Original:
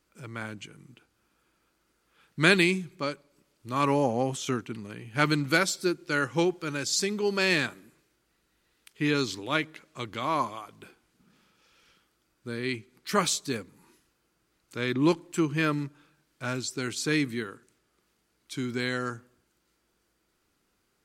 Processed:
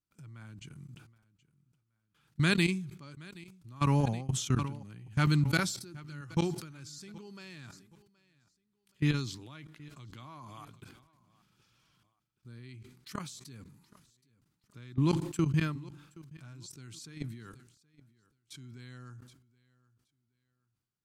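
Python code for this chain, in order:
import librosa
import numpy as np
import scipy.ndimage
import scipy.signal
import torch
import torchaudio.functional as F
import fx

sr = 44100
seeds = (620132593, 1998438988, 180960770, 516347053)

p1 = fx.graphic_eq(x, sr, hz=(125, 500, 2000), db=(12, -9, -4))
p2 = fx.level_steps(p1, sr, step_db=23)
p3 = p2 + fx.echo_feedback(p2, sr, ms=773, feedback_pct=31, wet_db=-22, dry=0)
p4 = fx.sustainer(p3, sr, db_per_s=77.0)
y = p4 * 10.0 ** (-2.0 / 20.0)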